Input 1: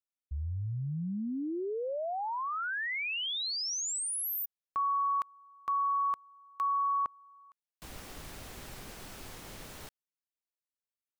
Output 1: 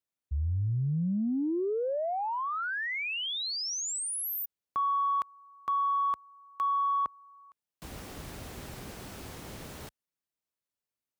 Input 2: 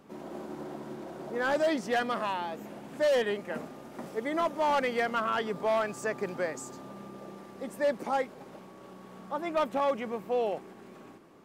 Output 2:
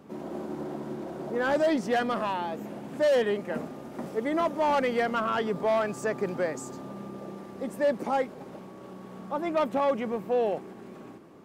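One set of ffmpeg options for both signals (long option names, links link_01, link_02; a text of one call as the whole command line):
ffmpeg -i in.wav -filter_complex "[0:a]highpass=48,tiltshelf=frequency=700:gain=3,asplit=2[link_01][link_02];[link_02]asoftclip=type=tanh:threshold=-27.5dB,volume=-6dB[link_03];[link_01][link_03]amix=inputs=2:normalize=0" out.wav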